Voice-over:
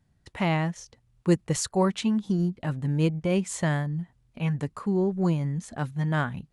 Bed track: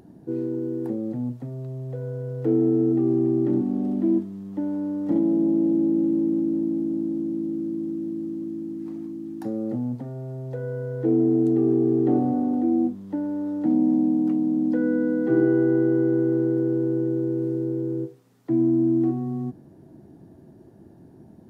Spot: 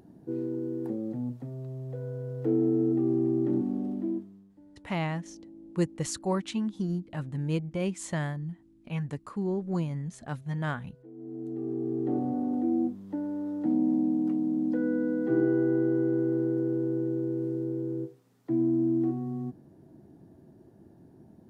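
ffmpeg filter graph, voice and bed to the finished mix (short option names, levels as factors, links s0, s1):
-filter_complex "[0:a]adelay=4500,volume=0.531[s0];[1:a]volume=7.5,afade=t=out:st=3.67:d=0.88:silence=0.0707946,afade=t=in:st=11.14:d=1.43:silence=0.0749894[s1];[s0][s1]amix=inputs=2:normalize=0"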